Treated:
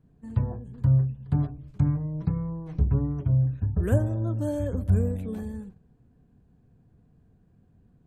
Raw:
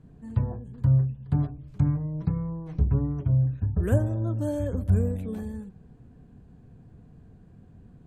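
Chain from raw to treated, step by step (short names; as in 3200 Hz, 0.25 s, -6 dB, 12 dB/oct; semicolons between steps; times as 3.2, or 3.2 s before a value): gate -45 dBFS, range -9 dB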